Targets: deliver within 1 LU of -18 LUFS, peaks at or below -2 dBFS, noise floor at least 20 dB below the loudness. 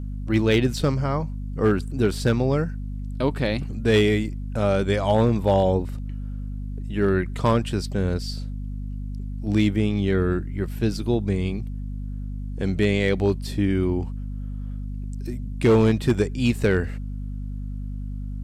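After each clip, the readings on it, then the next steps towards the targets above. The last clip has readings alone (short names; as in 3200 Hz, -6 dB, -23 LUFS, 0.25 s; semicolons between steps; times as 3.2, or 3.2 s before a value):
clipped 0.4%; flat tops at -11.5 dBFS; hum 50 Hz; harmonics up to 250 Hz; hum level -28 dBFS; loudness -24.5 LUFS; peak -11.5 dBFS; loudness target -18.0 LUFS
-> clip repair -11.5 dBFS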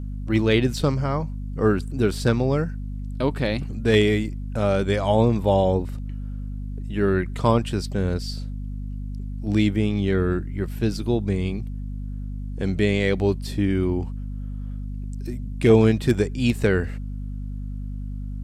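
clipped 0.0%; hum 50 Hz; harmonics up to 250 Hz; hum level -28 dBFS
-> notches 50/100/150/200/250 Hz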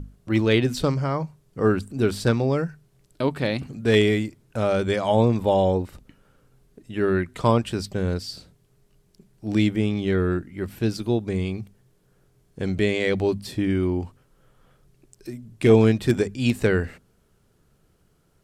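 hum none; loudness -23.0 LUFS; peak -5.0 dBFS; loudness target -18.0 LUFS
-> gain +5 dB; limiter -2 dBFS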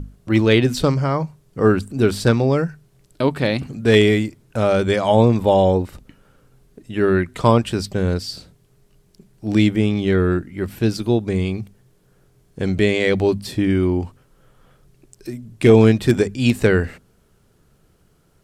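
loudness -18.5 LUFS; peak -2.0 dBFS; noise floor -58 dBFS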